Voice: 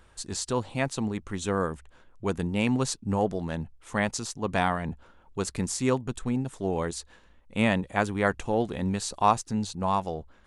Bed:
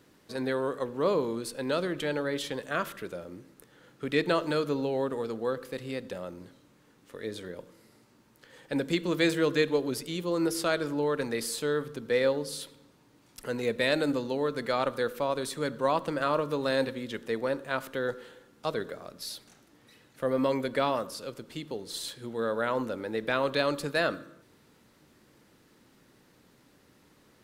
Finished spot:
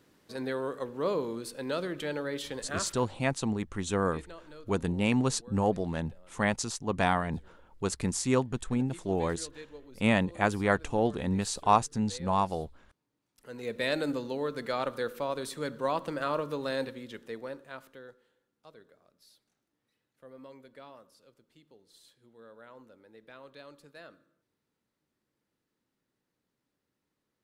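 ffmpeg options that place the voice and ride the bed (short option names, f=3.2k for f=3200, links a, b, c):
-filter_complex "[0:a]adelay=2450,volume=-1dB[a];[1:a]volume=14.5dB,afade=t=out:st=2.69:d=0.44:silence=0.125893,afade=t=in:st=13.35:d=0.51:silence=0.125893,afade=t=out:st=16.43:d=1.76:silence=0.112202[b];[a][b]amix=inputs=2:normalize=0"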